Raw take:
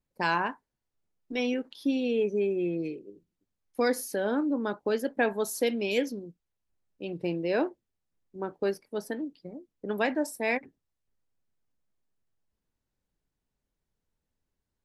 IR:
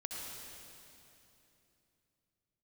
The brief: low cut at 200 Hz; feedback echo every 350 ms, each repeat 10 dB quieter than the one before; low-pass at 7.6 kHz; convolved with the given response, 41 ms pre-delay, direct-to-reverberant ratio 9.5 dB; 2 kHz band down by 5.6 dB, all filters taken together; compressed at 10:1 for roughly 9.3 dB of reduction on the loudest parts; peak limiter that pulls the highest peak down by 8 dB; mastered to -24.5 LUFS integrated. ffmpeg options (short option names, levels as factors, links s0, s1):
-filter_complex "[0:a]highpass=200,lowpass=7600,equalizer=f=2000:t=o:g=-7.5,acompressor=threshold=0.0251:ratio=10,alimiter=level_in=1.88:limit=0.0631:level=0:latency=1,volume=0.531,aecho=1:1:350|700|1050|1400:0.316|0.101|0.0324|0.0104,asplit=2[s0][s1];[1:a]atrim=start_sample=2205,adelay=41[s2];[s1][s2]afir=irnorm=-1:irlink=0,volume=0.335[s3];[s0][s3]amix=inputs=2:normalize=0,volume=5.62"